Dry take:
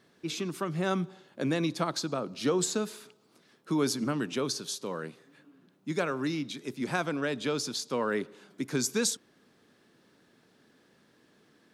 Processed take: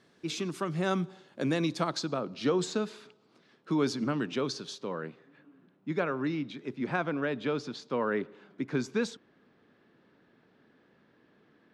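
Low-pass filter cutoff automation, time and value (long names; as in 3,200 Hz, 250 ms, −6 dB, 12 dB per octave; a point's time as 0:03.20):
0:01.75 9,000 Hz
0:02.22 4,400 Hz
0:04.61 4,400 Hz
0:05.02 2,600 Hz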